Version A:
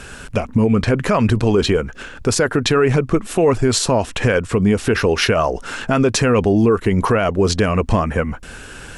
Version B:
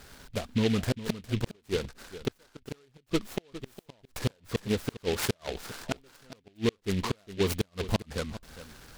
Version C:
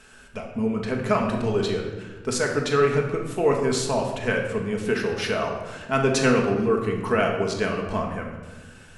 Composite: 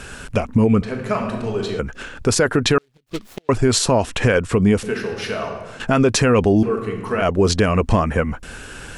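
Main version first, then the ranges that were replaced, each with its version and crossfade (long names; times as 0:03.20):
A
0:00.82–0:01.79: punch in from C
0:02.78–0:03.49: punch in from B
0:04.83–0:05.80: punch in from C
0:06.63–0:07.22: punch in from C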